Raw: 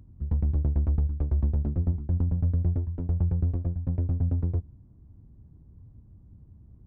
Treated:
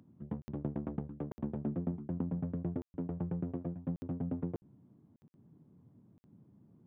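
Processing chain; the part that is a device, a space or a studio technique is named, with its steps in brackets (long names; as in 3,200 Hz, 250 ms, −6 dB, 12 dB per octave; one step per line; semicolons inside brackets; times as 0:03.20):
call with lost packets (high-pass filter 160 Hz 24 dB per octave; downsampling to 8,000 Hz; dropped packets of 60 ms random)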